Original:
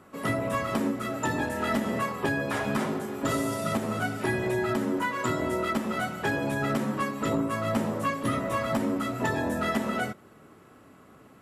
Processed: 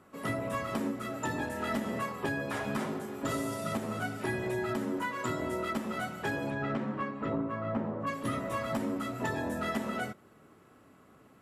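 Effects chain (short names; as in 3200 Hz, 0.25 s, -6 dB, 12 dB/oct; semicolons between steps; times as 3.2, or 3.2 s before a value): 6.49–8.06 LPF 3400 Hz -> 1300 Hz 12 dB/oct; gain -5.5 dB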